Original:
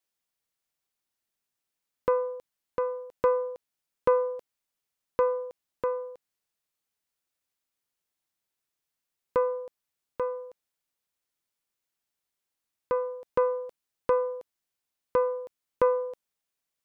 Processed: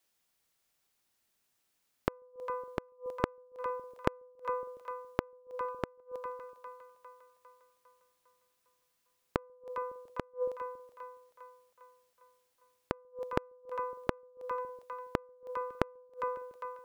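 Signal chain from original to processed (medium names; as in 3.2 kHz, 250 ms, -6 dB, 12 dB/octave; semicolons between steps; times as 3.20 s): two-band feedback delay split 690 Hz, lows 139 ms, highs 403 ms, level -14.5 dB; inverted gate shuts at -26 dBFS, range -37 dB; trim +7.5 dB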